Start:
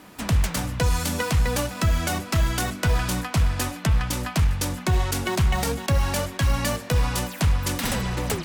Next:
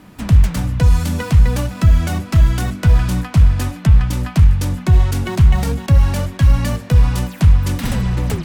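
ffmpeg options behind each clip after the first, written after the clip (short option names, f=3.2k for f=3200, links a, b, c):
-af "bass=f=250:g=11,treble=f=4k:g=-3"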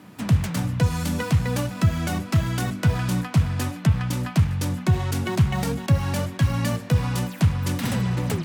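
-af "highpass=f=98:w=0.5412,highpass=f=98:w=1.3066,volume=-3dB"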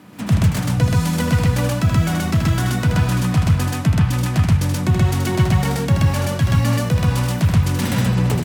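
-af "aecho=1:1:78.72|128.3:0.501|1,volume=2dB"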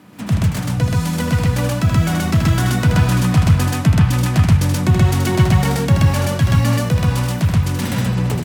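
-af "dynaudnorm=f=300:g=13:m=11.5dB,volume=-1dB"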